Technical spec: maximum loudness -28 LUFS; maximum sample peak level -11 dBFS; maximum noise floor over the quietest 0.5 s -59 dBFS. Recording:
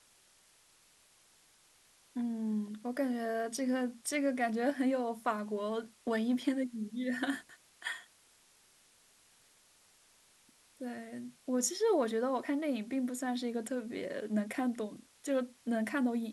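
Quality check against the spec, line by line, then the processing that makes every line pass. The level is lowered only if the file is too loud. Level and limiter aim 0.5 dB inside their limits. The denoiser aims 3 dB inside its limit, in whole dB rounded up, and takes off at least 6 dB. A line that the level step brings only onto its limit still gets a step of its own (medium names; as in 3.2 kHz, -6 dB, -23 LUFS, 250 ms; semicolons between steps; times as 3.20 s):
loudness -35.0 LUFS: pass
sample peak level -19.0 dBFS: pass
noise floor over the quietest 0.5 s -66 dBFS: pass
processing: none needed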